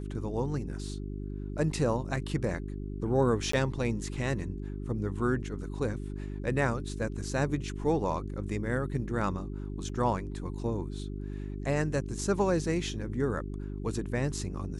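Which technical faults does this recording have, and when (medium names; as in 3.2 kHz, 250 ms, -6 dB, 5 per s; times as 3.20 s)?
hum 50 Hz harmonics 8 -37 dBFS
3.52–3.53 s: dropout 14 ms
9.89 s: dropout 4 ms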